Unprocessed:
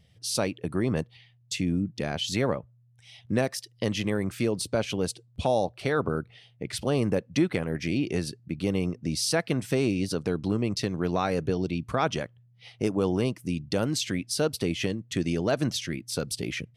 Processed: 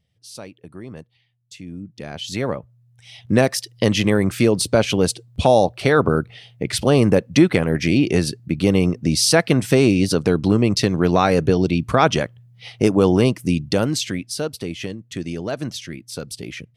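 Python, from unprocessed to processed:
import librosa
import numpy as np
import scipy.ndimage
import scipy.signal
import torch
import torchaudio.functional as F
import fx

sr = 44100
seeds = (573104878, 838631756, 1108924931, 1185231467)

y = fx.gain(x, sr, db=fx.line((1.59, -9.5), (2.38, 2.0), (3.48, 10.5), (13.53, 10.5), (14.55, -0.5)))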